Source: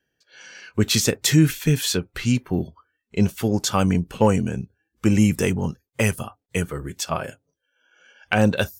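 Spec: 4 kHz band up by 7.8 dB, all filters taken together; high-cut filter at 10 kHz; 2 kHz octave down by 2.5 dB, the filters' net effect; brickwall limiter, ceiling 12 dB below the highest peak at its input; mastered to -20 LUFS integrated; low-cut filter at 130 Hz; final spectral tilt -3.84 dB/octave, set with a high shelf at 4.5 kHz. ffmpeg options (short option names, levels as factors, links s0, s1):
-af "highpass=130,lowpass=10000,equalizer=f=2000:t=o:g=-8,equalizer=f=4000:t=o:g=7,highshelf=f=4500:g=8.5,volume=1.5,alimiter=limit=0.447:level=0:latency=1"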